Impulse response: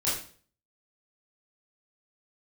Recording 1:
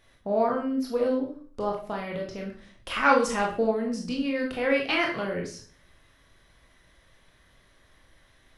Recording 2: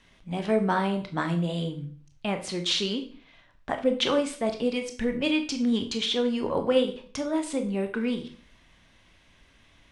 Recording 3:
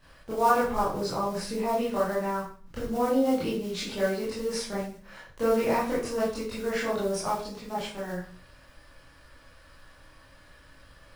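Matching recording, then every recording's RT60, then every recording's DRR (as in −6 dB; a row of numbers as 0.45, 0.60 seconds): 3; 0.45, 0.45, 0.45 seconds; −0.5, 6.0, −9.5 decibels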